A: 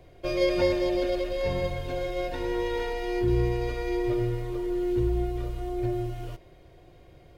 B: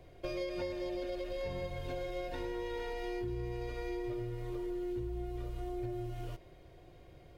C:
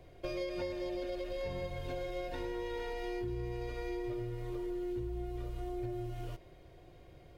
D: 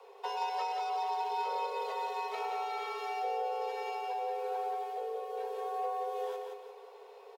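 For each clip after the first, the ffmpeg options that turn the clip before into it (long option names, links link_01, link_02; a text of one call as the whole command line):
ffmpeg -i in.wav -af "acompressor=threshold=-32dB:ratio=6,volume=-3.5dB" out.wav
ffmpeg -i in.wav -af anull out.wav
ffmpeg -i in.wav -af "aecho=1:1:176|352|528|704|880:0.596|0.226|0.086|0.0327|0.0124,afreqshift=390,volume=1.5dB" out.wav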